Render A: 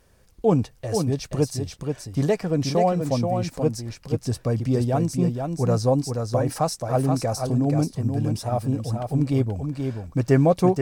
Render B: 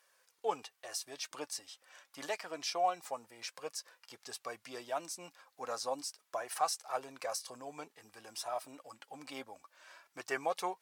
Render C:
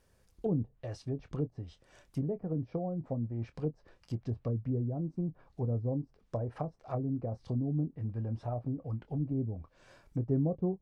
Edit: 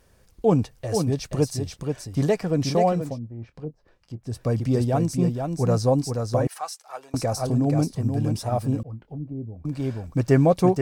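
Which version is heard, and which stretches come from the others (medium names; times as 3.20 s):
A
3.07–4.35 s: from C, crossfade 0.24 s
6.47–7.14 s: from B
8.83–9.65 s: from C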